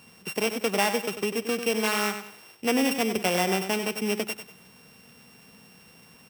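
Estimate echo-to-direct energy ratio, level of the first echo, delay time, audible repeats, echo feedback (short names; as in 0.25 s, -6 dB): -8.5 dB, -9.0 dB, 96 ms, 3, 33%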